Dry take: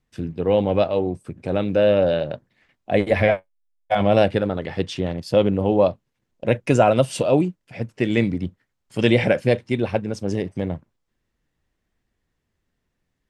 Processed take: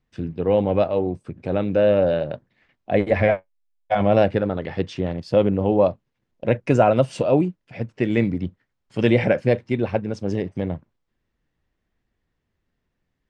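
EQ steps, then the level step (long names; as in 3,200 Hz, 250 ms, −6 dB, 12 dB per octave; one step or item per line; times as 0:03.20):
dynamic equaliser 3,400 Hz, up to −5 dB, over −41 dBFS, Q 1.8
high-frequency loss of the air 94 metres
0.0 dB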